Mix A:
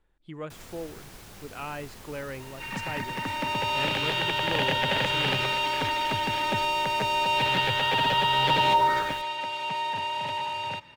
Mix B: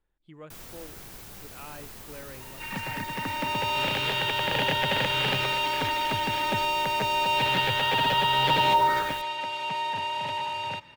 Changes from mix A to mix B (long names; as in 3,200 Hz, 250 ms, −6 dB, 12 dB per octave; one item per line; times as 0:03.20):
speech −8.0 dB
first sound: add high-shelf EQ 12,000 Hz +11 dB